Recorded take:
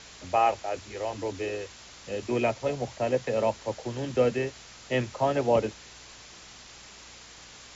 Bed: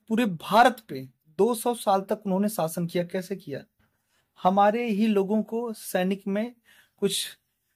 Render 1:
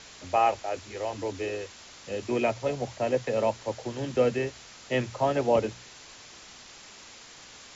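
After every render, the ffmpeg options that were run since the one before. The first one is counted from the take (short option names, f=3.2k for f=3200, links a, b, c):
-af "bandreject=f=60:t=h:w=4,bandreject=f=120:t=h:w=4,bandreject=f=180:t=h:w=4"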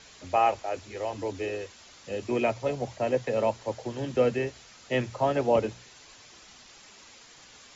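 -af "afftdn=nr=6:nf=-49"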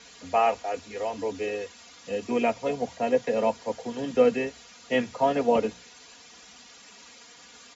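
-af "highpass=71,aecho=1:1:4.2:0.72"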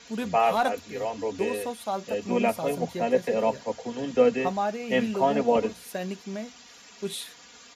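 -filter_complex "[1:a]volume=-7.5dB[a];[0:a][a]amix=inputs=2:normalize=0"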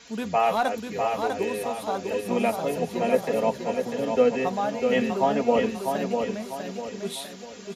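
-af "aecho=1:1:648|1296|1944|2592|3240:0.562|0.225|0.09|0.036|0.0144"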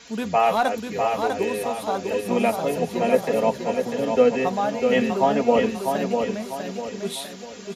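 -af "volume=3dB"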